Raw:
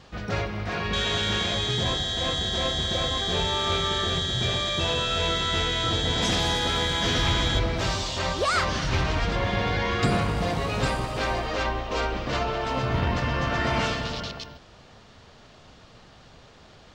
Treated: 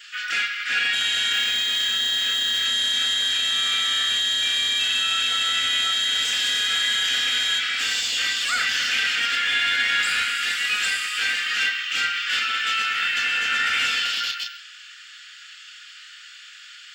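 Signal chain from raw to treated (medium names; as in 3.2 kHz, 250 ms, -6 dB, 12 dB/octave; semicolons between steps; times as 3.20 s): steep high-pass 1.3 kHz 96 dB/octave; tilt EQ +3.5 dB/octave; peak limiter -19 dBFS, peak gain reduction 9.5 dB; saturation -25.5 dBFS, distortion -14 dB; reverberation, pre-delay 3 ms, DRR 4 dB; 1.32–2.66 s: decimation joined by straight lines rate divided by 2×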